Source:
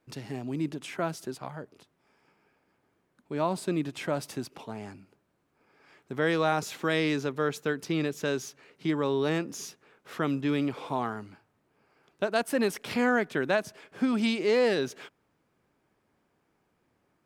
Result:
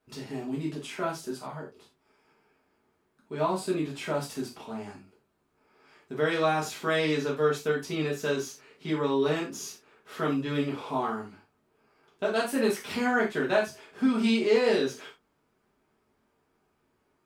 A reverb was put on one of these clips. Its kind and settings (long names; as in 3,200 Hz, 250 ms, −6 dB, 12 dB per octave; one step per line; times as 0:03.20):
reverb whose tail is shaped and stops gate 120 ms falling, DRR −5 dB
level −5.5 dB